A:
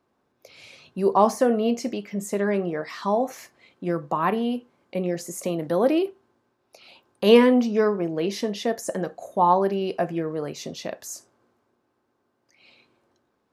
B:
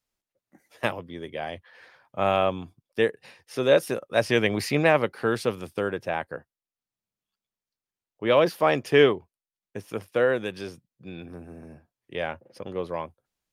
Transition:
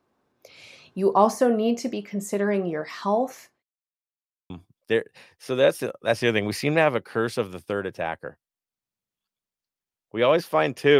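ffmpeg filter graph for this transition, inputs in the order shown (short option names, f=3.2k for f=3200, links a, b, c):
-filter_complex "[0:a]apad=whole_dur=10.99,atrim=end=10.99,asplit=2[a][b];[a]atrim=end=3.63,asetpts=PTS-STARTPTS,afade=t=out:st=3.12:d=0.51:c=qsin[c];[b]atrim=start=3.63:end=4.5,asetpts=PTS-STARTPTS,volume=0[d];[1:a]atrim=start=2.58:end=9.07,asetpts=PTS-STARTPTS,afade=t=in:d=0.004:c=hsin[e];[c][d][e]concat=n=3:v=0:a=1"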